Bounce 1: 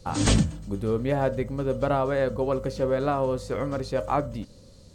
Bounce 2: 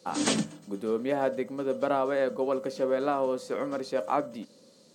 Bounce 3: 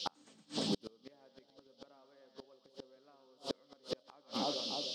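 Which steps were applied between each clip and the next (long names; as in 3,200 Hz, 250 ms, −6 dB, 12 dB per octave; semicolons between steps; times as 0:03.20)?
high-pass filter 210 Hz 24 dB per octave; level −2 dB
noise in a band 3,000–5,400 Hz −41 dBFS; echo with a time of its own for lows and highs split 850 Hz, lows 303 ms, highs 115 ms, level −9 dB; gate with flip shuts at −21 dBFS, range −36 dB; level −1 dB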